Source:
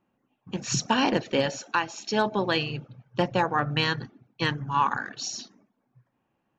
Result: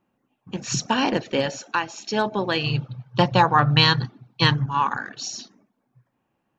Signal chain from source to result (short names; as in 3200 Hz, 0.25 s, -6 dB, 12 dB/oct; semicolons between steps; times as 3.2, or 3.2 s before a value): 2.64–4.66 ten-band EQ 125 Hz +11 dB, 1000 Hz +8 dB, 4000 Hz +11 dB; gain +1.5 dB